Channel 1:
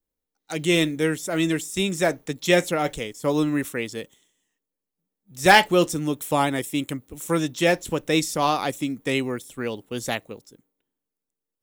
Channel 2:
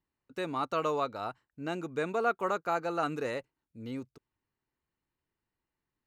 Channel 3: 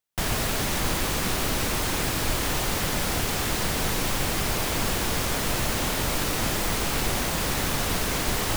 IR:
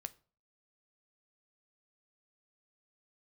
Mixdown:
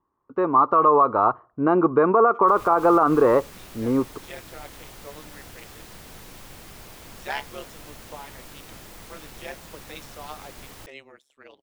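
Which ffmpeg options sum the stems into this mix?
-filter_complex "[0:a]acrossover=split=430 6200:gain=0.0708 1 0.2[link_01][link_02][link_03];[link_01][link_02][link_03]amix=inputs=3:normalize=0,tremolo=f=140:d=0.919,adelay=1800,volume=-12.5dB,asplit=2[link_04][link_05];[link_05]volume=-17.5dB[link_06];[1:a]dynaudnorm=framelen=530:gausssize=3:maxgain=7dB,lowpass=frequency=1100:width_type=q:width=6.7,equalizer=frequency=370:width=1.5:gain=7.5,volume=2.5dB,asplit=3[link_07][link_08][link_09];[link_08]volume=-4.5dB[link_10];[2:a]highshelf=frequency=9900:gain=7,adelay=2300,volume=-18dB[link_11];[link_09]apad=whole_len=592156[link_12];[link_04][link_12]sidechaincompress=threshold=-31dB:ratio=4:attack=16:release=754[link_13];[3:a]atrim=start_sample=2205[link_14];[link_06][link_10]amix=inputs=2:normalize=0[link_15];[link_15][link_14]afir=irnorm=-1:irlink=0[link_16];[link_13][link_07][link_11][link_16]amix=inputs=4:normalize=0,highshelf=frequency=7100:gain=-4.5,alimiter=limit=-8dB:level=0:latency=1:release=62"

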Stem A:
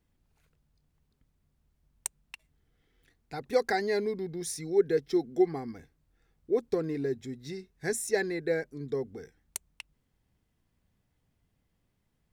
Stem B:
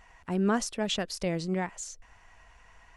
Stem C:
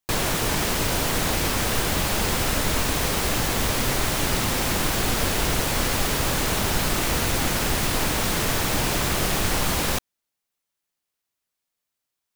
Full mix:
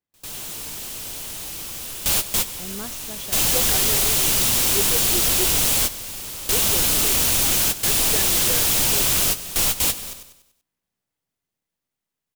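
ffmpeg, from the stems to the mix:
ffmpeg -i stem1.wav -i stem2.wav -i stem3.wav -filter_complex "[0:a]highpass=frequency=430:poles=1,dynaudnorm=framelen=750:gausssize=7:maxgain=7.5dB,volume=-9.5dB,asplit=2[link_01][link_02];[1:a]adelay=2300,volume=-10dB[link_03];[2:a]aexciter=amount=3.2:drive=5.1:freq=2600,volume=13.5dB,asoftclip=hard,volume=-13.5dB,acrusher=bits=8:dc=4:mix=0:aa=0.000001,adelay=50,volume=-2dB,asplit=2[link_04][link_05];[link_05]volume=-14.5dB[link_06];[link_02]apad=whole_len=547266[link_07];[link_04][link_07]sidechaingate=range=-38dB:threshold=-59dB:ratio=16:detection=peak[link_08];[link_06]aecho=0:1:96|192|288|384|480|576:1|0.44|0.194|0.0852|0.0375|0.0165[link_09];[link_01][link_03][link_08][link_09]amix=inputs=4:normalize=0" out.wav

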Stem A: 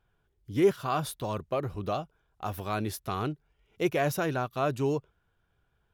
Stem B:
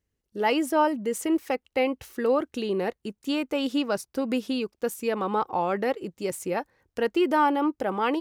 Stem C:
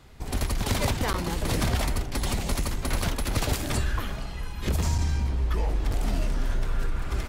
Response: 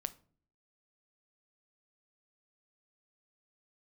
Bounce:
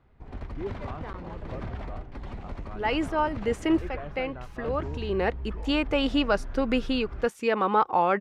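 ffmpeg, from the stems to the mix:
-filter_complex "[0:a]volume=-12.5dB,asplit=2[link_01][link_02];[1:a]deesser=0.7,crystalizer=i=10:c=0,adelay=2400,volume=0dB[link_03];[2:a]volume=-10dB[link_04];[link_02]apad=whole_len=467648[link_05];[link_03][link_05]sidechaincompress=threshold=-47dB:ratio=6:attack=16:release=351[link_06];[link_01][link_06][link_04]amix=inputs=3:normalize=0,lowpass=1800"

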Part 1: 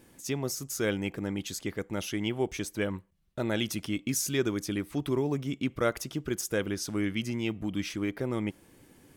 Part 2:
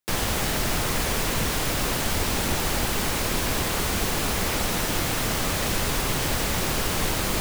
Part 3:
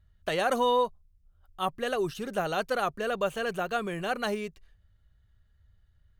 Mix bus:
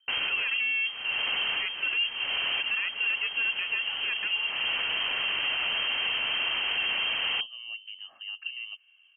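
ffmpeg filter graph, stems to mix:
ffmpeg -i stem1.wav -i stem2.wav -i stem3.wav -filter_complex "[0:a]lowpass=1400,aecho=1:1:2:0.48,acompressor=threshold=-32dB:ratio=6,adelay=250,volume=-8dB[link_01];[1:a]volume=-4.5dB[link_02];[2:a]aeval=exprs='if(lt(val(0),0),0.251*val(0),val(0))':channel_layout=same,volume=-2dB,asplit=3[link_03][link_04][link_05];[link_03]atrim=end=2.09,asetpts=PTS-STARTPTS,afade=type=out:start_time=2.086:duration=0.004:curve=hsin[link_06];[link_04]atrim=start=2.09:end=2.6,asetpts=PTS-STARTPTS,volume=0[link_07];[link_05]atrim=start=2.6,asetpts=PTS-STARTPTS,afade=type=in:duration=0.004:curve=hsin[link_08];[link_06][link_07][link_08]concat=n=3:v=0:a=1,asplit=2[link_09][link_10];[link_10]apad=whole_len=326524[link_11];[link_02][link_11]sidechaincompress=threshold=-44dB:ratio=5:attack=45:release=300[link_12];[link_01][link_12][link_09]amix=inputs=3:normalize=0,equalizer=frequency=440:width=3.9:gain=14.5,lowpass=frequency=2700:width_type=q:width=0.5098,lowpass=frequency=2700:width_type=q:width=0.6013,lowpass=frequency=2700:width_type=q:width=0.9,lowpass=frequency=2700:width_type=q:width=2.563,afreqshift=-3200,alimiter=limit=-20.5dB:level=0:latency=1:release=11" out.wav

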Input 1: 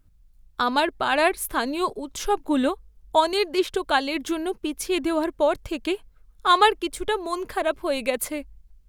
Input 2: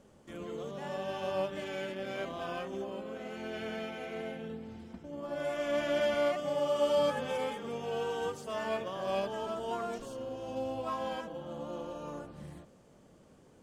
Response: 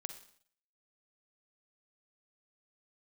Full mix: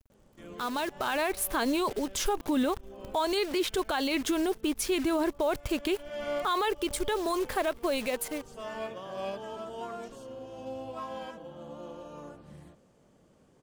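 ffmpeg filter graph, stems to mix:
-filter_complex "[0:a]alimiter=limit=-16dB:level=0:latency=1:release=42,dynaudnorm=framelen=280:gausssize=9:maxgain=11dB,acrusher=bits=6:dc=4:mix=0:aa=0.000001,volume=-9dB,asplit=2[link_01][link_02];[1:a]adelay=100,volume=-3dB[link_03];[link_02]apad=whole_len=605367[link_04];[link_03][link_04]sidechaincompress=threshold=-39dB:ratio=12:attack=16:release=253[link_05];[link_01][link_05]amix=inputs=2:normalize=0,alimiter=limit=-20dB:level=0:latency=1:release=29"

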